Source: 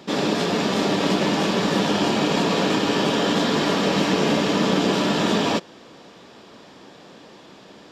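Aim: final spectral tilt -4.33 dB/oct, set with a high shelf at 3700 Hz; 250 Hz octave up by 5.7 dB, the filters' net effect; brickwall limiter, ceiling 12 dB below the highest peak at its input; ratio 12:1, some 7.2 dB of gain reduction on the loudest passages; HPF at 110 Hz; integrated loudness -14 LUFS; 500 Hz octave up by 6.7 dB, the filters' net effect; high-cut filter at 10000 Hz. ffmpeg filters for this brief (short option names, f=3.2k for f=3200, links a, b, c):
-af "highpass=110,lowpass=10k,equalizer=f=250:t=o:g=5.5,equalizer=f=500:t=o:g=6.5,highshelf=f=3.7k:g=9,acompressor=threshold=-18dB:ratio=12,volume=17dB,alimiter=limit=-4.5dB:level=0:latency=1"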